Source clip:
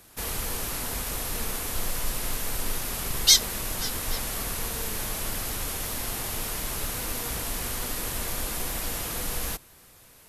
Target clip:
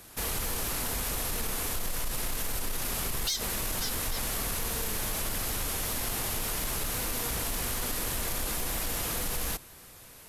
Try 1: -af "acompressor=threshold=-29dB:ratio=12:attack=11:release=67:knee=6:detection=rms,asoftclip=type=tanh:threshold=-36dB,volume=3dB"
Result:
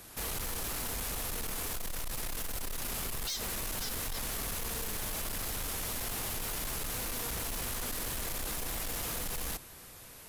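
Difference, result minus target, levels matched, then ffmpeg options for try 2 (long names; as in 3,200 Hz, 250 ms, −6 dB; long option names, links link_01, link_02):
soft clipping: distortion +12 dB
-af "acompressor=threshold=-29dB:ratio=12:attack=11:release=67:knee=6:detection=rms,asoftclip=type=tanh:threshold=-25.5dB,volume=3dB"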